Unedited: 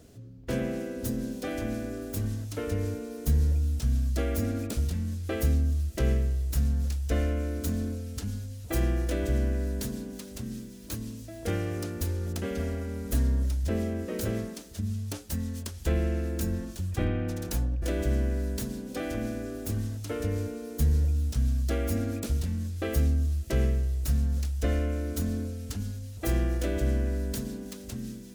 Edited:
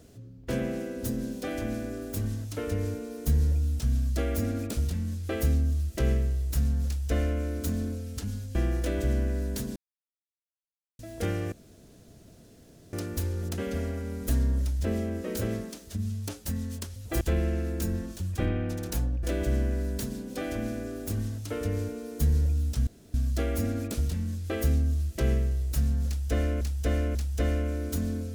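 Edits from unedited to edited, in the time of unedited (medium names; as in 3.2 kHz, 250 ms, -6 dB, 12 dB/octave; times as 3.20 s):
8.55–8.80 s: move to 15.80 s
10.01–11.24 s: mute
11.77 s: insert room tone 1.41 s
21.46 s: insert room tone 0.27 s
24.39–24.93 s: loop, 3 plays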